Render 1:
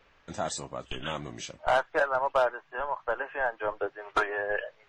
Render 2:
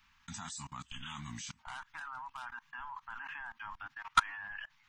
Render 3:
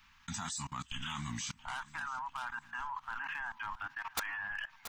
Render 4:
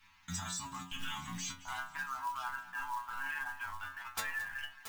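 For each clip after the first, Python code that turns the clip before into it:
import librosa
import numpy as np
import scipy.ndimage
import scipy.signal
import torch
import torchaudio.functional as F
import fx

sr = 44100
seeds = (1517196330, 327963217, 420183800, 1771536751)

y1 = scipy.signal.sosfilt(scipy.signal.ellip(3, 1.0, 60, [240.0, 910.0], 'bandstop', fs=sr, output='sos'), x)
y1 = fx.high_shelf(y1, sr, hz=4900.0, db=11.0)
y1 = fx.level_steps(y1, sr, step_db=24)
y1 = y1 * librosa.db_to_amplitude(4.0)
y2 = (np.mod(10.0 ** (21.5 / 20.0) * y1 + 1.0, 2.0) - 1.0) / 10.0 ** (21.5 / 20.0)
y2 = fx.echo_feedback(y2, sr, ms=679, feedback_pct=44, wet_db=-20.0)
y2 = np.clip(10.0 ** (35.5 / 20.0) * y2, -1.0, 1.0) / 10.0 ** (35.5 / 20.0)
y2 = y2 * librosa.db_to_amplitude(4.5)
y3 = fx.stiff_resonator(y2, sr, f0_hz=89.0, decay_s=0.47, stiffness=0.002)
y3 = fx.quant_float(y3, sr, bits=2)
y3 = y3 + 10.0 ** (-17.0 / 20.0) * np.pad(y3, (int(219 * sr / 1000.0), 0))[:len(y3)]
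y3 = y3 * librosa.db_to_amplitude(10.5)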